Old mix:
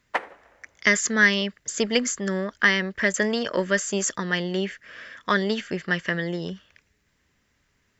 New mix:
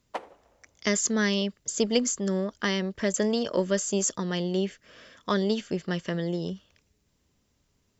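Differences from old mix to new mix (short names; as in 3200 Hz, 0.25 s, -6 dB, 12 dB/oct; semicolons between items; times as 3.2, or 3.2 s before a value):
background -3.5 dB; master: add bell 1800 Hz -14 dB 1.1 oct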